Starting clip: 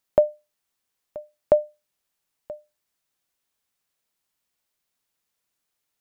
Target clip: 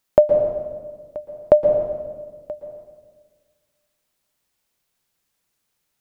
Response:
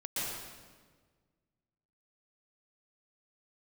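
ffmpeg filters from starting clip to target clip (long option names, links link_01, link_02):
-filter_complex "[0:a]asplit=2[link_01][link_02];[1:a]atrim=start_sample=2205,lowshelf=frequency=400:gain=7[link_03];[link_02][link_03]afir=irnorm=-1:irlink=0,volume=-9dB[link_04];[link_01][link_04]amix=inputs=2:normalize=0,volume=3dB"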